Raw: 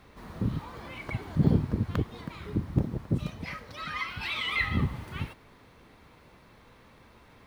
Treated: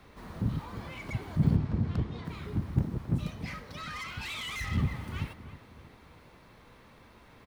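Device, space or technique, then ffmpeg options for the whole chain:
one-band saturation: -filter_complex "[0:a]asettb=1/sr,asplit=3[link_01][link_02][link_03];[link_01]atrim=end=1.564[link_04];[link_02]atrim=start=1.56:end=2.25,asetpts=PTS-STARTPTS,afade=type=in:duration=0.004:curve=qsin,afade=type=out:start_time=0.686:duration=0.004:curve=qsin,lowpass=5300[link_05];[link_03]atrim=start=2.246[link_06];[link_04][link_05]acrossfade=duration=0.004:curve1=hsin:curve2=qsin[link_07];[link_07][link_06]acrossfade=duration=0.004:curve1=qsin:curve2=hsin,asplit=2[link_08][link_09];[link_09]adelay=315,lowpass=frequency=2000:poles=1,volume=-14.5dB,asplit=2[link_10][link_11];[link_11]adelay=315,lowpass=frequency=2000:poles=1,volume=0.44,asplit=2[link_12][link_13];[link_13]adelay=315,lowpass=frequency=2000:poles=1,volume=0.44,asplit=2[link_14][link_15];[link_15]adelay=315,lowpass=frequency=2000:poles=1,volume=0.44[link_16];[link_08][link_10][link_12][link_14][link_16]amix=inputs=5:normalize=0,acrossover=split=210|5000[link_17][link_18][link_19];[link_18]asoftclip=type=tanh:threshold=-37dB[link_20];[link_17][link_20][link_19]amix=inputs=3:normalize=0"

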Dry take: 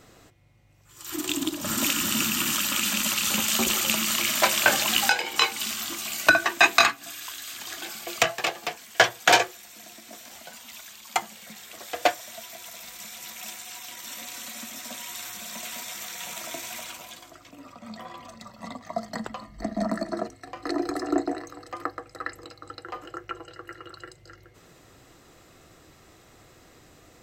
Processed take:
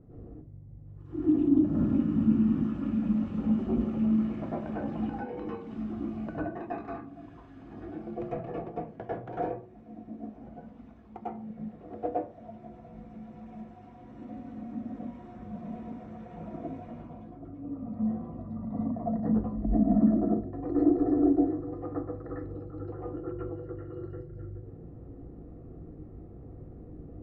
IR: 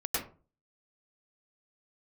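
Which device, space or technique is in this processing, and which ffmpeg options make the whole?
television next door: -filter_complex "[0:a]acompressor=threshold=-27dB:ratio=4,lowpass=280[link_01];[1:a]atrim=start_sample=2205[link_02];[link_01][link_02]afir=irnorm=-1:irlink=0,volume=6dB"

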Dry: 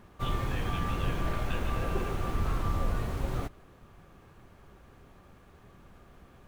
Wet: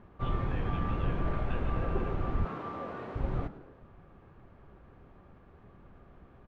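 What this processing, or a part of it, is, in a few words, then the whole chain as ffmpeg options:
phone in a pocket: -filter_complex "[0:a]asettb=1/sr,asplit=3[link_01][link_02][link_03];[link_01]atrim=end=2.454[link_04];[link_02]atrim=start=2.45:end=3.16,asetpts=PTS-STARTPTS,afade=type=in:duration=0.004:curve=qsin,afade=type=out:start_time=0.706:duration=0.004:curve=qsin,highpass=280[link_05];[link_03]atrim=start=3.156[link_06];[link_04][link_05]acrossfade=duration=0.004:curve1=hsin:curve2=qsin[link_07];[link_07][link_06]acrossfade=duration=0.004:curve1=qsin:curve2=hsin,lowpass=3400,highshelf=frequency=2300:gain=-11,asplit=5[link_08][link_09][link_10][link_11][link_12];[link_09]adelay=106,afreqshift=130,volume=-17.5dB[link_13];[link_10]adelay=212,afreqshift=260,volume=-24.1dB[link_14];[link_11]adelay=318,afreqshift=390,volume=-30.6dB[link_15];[link_12]adelay=424,afreqshift=520,volume=-37.2dB[link_16];[link_08][link_13][link_14][link_15][link_16]amix=inputs=5:normalize=0"

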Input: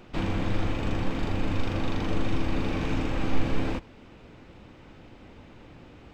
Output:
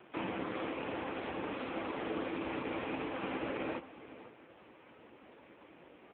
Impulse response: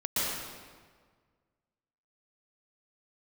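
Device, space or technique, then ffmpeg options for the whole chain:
satellite phone: -af "highpass=350,lowpass=3300,aecho=1:1:503:0.168" -ar 8000 -c:a libopencore_amrnb -b:a 5900

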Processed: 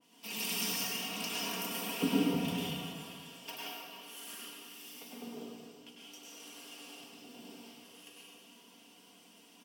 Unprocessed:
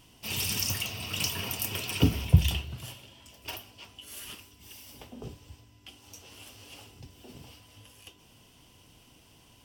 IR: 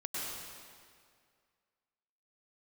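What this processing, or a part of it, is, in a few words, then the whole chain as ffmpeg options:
stairwell: -filter_complex "[0:a]highpass=frequency=190:width=0.5412,highpass=frequency=190:width=1.3066[link_01];[1:a]atrim=start_sample=2205[link_02];[link_01][link_02]afir=irnorm=-1:irlink=0,aecho=1:1:4.3:0.57,adynamicequalizer=threshold=0.00501:dfrequency=1900:dqfactor=0.7:tfrequency=1900:tqfactor=0.7:attack=5:release=100:ratio=0.375:range=3:mode=cutabove:tftype=highshelf,volume=-4dB"

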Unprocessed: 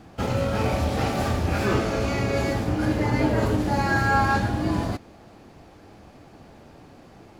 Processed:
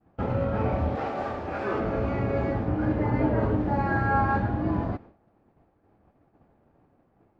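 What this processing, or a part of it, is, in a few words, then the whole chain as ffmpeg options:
hearing-loss simulation: -filter_complex "[0:a]lowpass=1500,agate=range=-33dB:threshold=-38dB:ratio=3:detection=peak,asettb=1/sr,asplit=3[link_01][link_02][link_03];[link_01]atrim=end=0.954[link_04];[link_02]atrim=start=0.95:end=1.8,asetpts=PTS-STARTPTS,afade=type=in:duration=0.004:curve=qsin,afade=type=out:start_time=0.846:duration=0.004:curve=qsin,bass=frequency=250:gain=-14,treble=frequency=4000:gain=6[link_05];[link_03]atrim=start=1.796[link_06];[link_04][link_05]acrossfade=duration=0.004:curve1=hsin:curve2=qsin[link_07];[link_07][link_06]acrossfade=duration=0.004:curve1=qsin:curve2=hsin,volume=-2dB"

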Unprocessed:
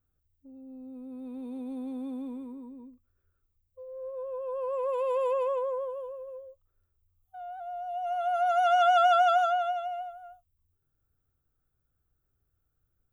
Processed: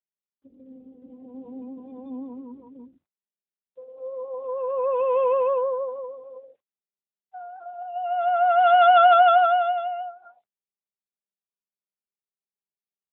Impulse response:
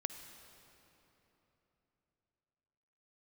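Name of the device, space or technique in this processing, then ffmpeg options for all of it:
mobile call with aggressive noise cancelling: -af "highpass=110,afftdn=noise_reduction=35:noise_floor=-52,volume=7.5dB" -ar 8000 -c:a libopencore_amrnb -b:a 12200

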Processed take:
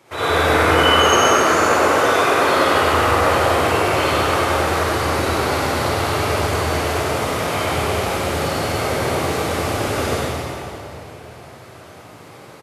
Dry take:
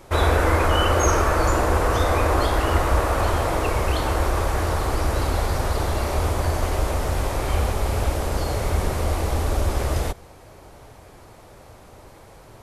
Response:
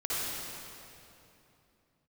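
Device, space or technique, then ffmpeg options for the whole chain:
PA in a hall: -filter_complex "[0:a]asettb=1/sr,asplit=3[link_01][link_02][link_03];[link_01]atrim=end=0.734[link_04];[link_02]atrim=start=0.73:end=2.56,asetpts=PTS-STARTPTS,afade=type=in:duration=0.004:curve=qsin,afade=type=out:start_time=1.826:duration=0.004:curve=qsin,highpass=200[link_05];[link_03]atrim=start=2.556[link_06];[link_04][link_05]acrossfade=duration=0.004:curve1=hsin:curve2=qsin[link_07];[link_07][link_06]acrossfade=duration=0.004:curve1=qsin:curve2=hsin,highpass=frequency=110:width=0.5412,highpass=frequency=110:width=1.3066,equalizer=frequency=2700:width_type=o:width=2:gain=5.5,aecho=1:1:98:0.596[link_08];[1:a]atrim=start_sample=2205[link_09];[link_08][link_09]afir=irnorm=-1:irlink=0,volume=-4dB"

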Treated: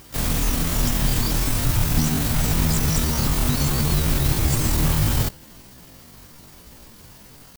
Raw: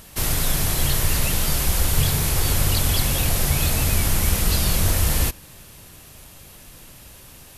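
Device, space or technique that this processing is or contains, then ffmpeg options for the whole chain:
chipmunk voice: -af "asetrate=76340,aresample=44100,atempo=0.577676"

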